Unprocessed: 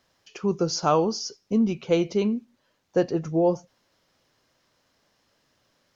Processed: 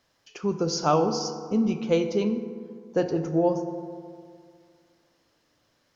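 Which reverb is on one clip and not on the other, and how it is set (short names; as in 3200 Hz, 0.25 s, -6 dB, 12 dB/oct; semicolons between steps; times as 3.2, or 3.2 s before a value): FDN reverb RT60 2.2 s, low-frequency decay 1×, high-frequency decay 0.4×, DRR 7 dB; gain -1.5 dB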